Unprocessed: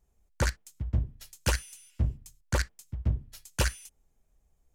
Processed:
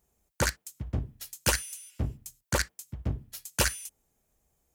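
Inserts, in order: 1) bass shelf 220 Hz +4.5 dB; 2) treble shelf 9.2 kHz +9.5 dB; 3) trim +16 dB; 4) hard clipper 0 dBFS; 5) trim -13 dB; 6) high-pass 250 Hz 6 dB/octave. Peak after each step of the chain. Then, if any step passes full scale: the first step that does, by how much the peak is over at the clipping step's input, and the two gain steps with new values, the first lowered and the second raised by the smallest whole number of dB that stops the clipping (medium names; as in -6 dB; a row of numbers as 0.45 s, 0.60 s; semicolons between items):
-13.5 dBFS, -12.5 dBFS, +3.5 dBFS, 0.0 dBFS, -13.0 dBFS, -10.0 dBFS; step 3, 3.5 dB; step 3 +12 dB, step 5 -9 dB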